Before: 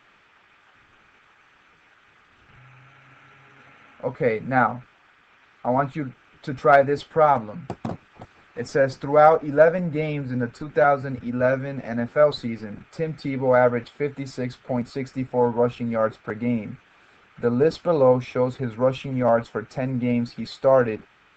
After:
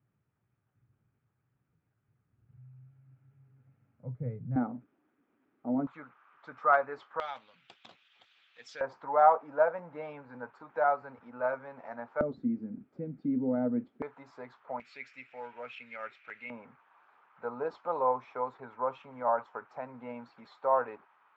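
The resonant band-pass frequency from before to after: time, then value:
resonant band-pass, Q 3.6
120 Hz
from 0:04.56 280 Hz
from 0:05.87 1,100 Hz
from 0:07.20 3,400 Hz
from 0:08.81 950 Hz
from 0:12.21 250 Hz
from 0:14.02 990 Hz
from 0:14.80 2,400 Hz
from 0:16.50 980 Hz

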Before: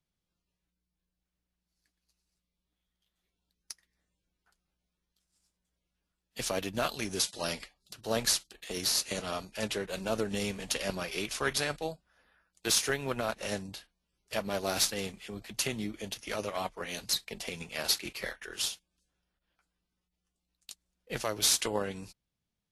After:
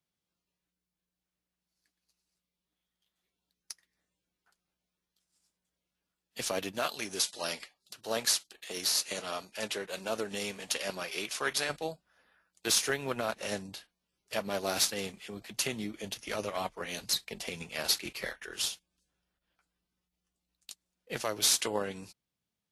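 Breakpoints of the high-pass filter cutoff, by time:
high-pass filter 6 dB per octave
180 Hz
from 0:06.72 420 Hz
from 0:11.69 140 Hz
from 0:16.04 52 Hz
from 0:20.70 150 Hz

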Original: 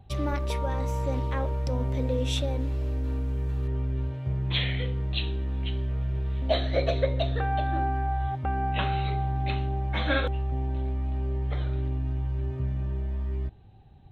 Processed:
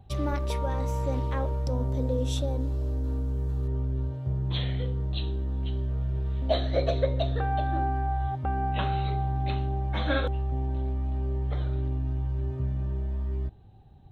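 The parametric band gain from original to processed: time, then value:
parametric band 2,300 Hz 1 octave
0:01.32 −3.5 dB
0:01.88 −14 dB
0:05.64 −14 dB
0:06.39 −6.5 dB

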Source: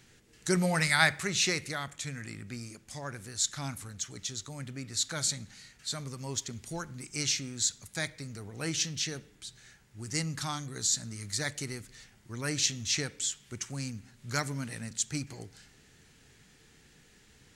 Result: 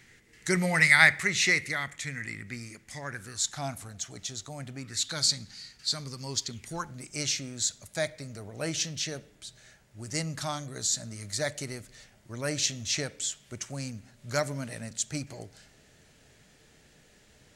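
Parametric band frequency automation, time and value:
parametric band +12.5 dB 0.39 octaves
0:03.08 2,000 Hz
0:03.61 680 Hz
0:04.74 680 Hz
0:05.15 4,700 Hz
0:06.46 4,700 Hz
0:06.93 610 Hz

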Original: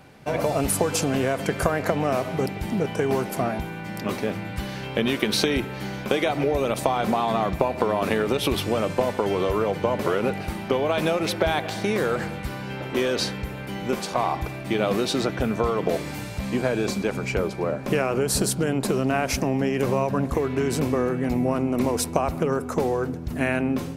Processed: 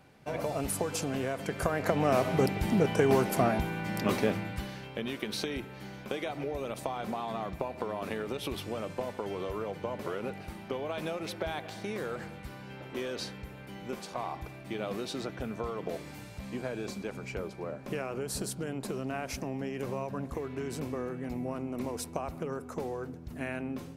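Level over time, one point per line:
0:01.49 −9.5 dB
0:02.23 −1 dB
0:04.26 −1 dB
0:04.93 −12.5 dB

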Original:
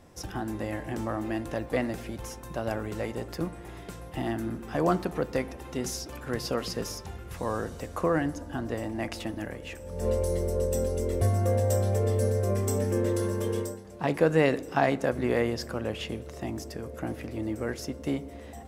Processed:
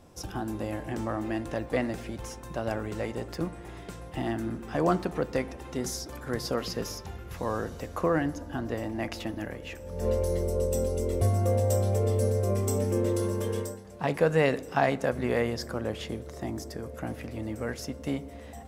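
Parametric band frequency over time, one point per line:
parametric band −7.5 dB 0.31 octaves
1,900 Hz
from 0:00.88 12,000 Hz
from 0:05.76 2,700 Hz
from 0:06.57 8,700 Hz
from 0:10.43 1,700 Hz
from 0:13.41 320 Hz
from 0:15.56 2,700 Hz
from 0:16.86 350 Hz

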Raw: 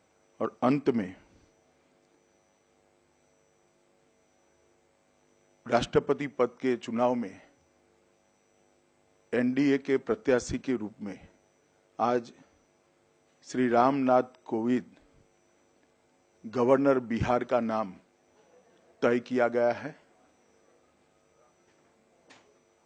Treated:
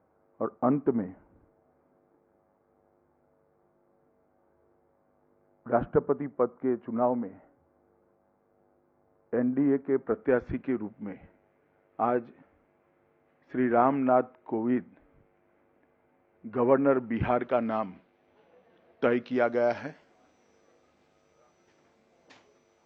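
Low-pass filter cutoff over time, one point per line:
low-pass filter 24 dB per octave
0:09.86 1,400 Hz
0:10.42 2,200 Hz
0:16.76 2,200 Hz
0:17.67 3,500 Hz
0:19.07 3,500 Hz
0:19.71 6,200 Hz

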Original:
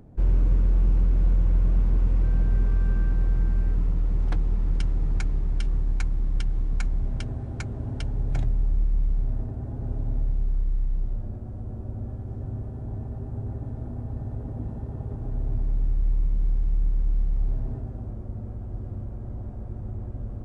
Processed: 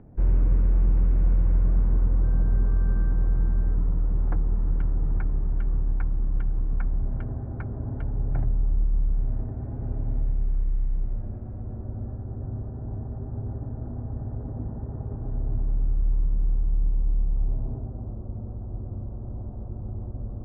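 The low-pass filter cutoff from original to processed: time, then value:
low-pass filter 24 dB per octave
0:01.37 2,300 Hz
0:02.23 1,600 Hz
0:08.87 1,600 Hz
0:09.71 2,300 Hz
0:11.49 2,300 Hz
0:12.27 1,600 Hz
0:16.34 1,600 Hz
0:16.98 1,200 Hz

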